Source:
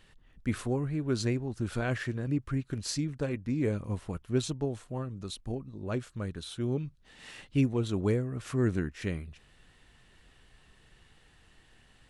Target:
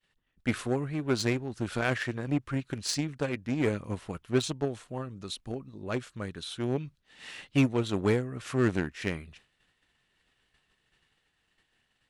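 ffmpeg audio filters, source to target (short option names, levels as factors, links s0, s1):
-filter_complex "[0:a]equalizer=f=2700:t=o:w=2.4:g=4.5,agate=range=0.0224:threshold=0.00398:ratio=3:detection=peak,asplit=2[s0][s1];[s1]acrusher=bits=3:mix=0:aa=0.5,volume=0.447[s2];[s0][s2]amix=inputs=2:normalize=0,lowshelf=f=83:g=-11"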